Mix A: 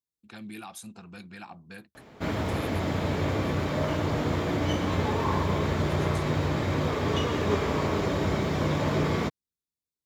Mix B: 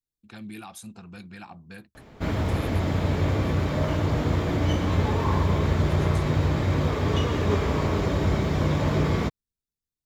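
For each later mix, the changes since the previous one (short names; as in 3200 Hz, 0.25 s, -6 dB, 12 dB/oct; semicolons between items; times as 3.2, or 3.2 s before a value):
master: remove HPF 170 Hz 6 dB/oct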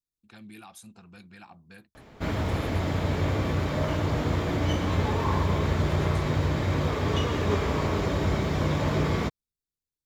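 first voice -5.0 dB; master: add low shelf 450 Hz -3 dB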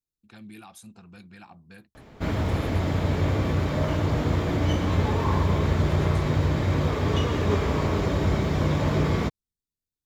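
master: add low shelf 450 Hz +3 dB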